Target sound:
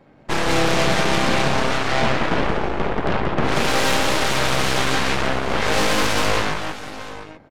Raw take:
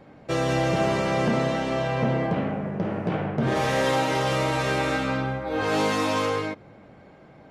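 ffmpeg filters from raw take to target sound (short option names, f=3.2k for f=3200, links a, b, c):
-af "aecho=1:1:181|837:0.631|0.335,aeval=exprs='0.299*(cos(1*acos(clip(val(0)/0.299,-1,1)))-cos(1*PI/2))+0.0531*(cos(3*acos(clip(val(0)/0.299,-1,1)))-cos(3*PI/2))+0.0944*(cos(5*acos(clip(val(0)/0.299,-1,1)))-cos(5*PI/2))+0.119*(cos(7*acos(clip(val(0)/0.299,-1,1)))-cos(7*PI/2))+0.0944*(cos(8*acos(clip(val(0)/0.299,-1,1)))-cos(8*PI/2))':c=same"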